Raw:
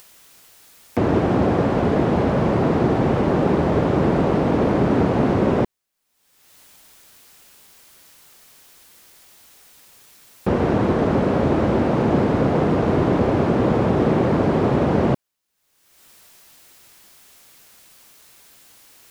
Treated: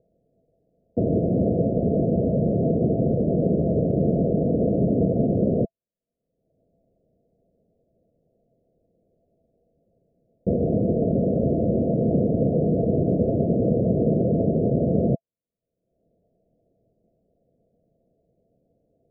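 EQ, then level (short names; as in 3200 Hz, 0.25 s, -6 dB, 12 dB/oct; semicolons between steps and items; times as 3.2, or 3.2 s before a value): rippled Chebyshev low-pass 690 Hz, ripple 6 dB; 0.0 dB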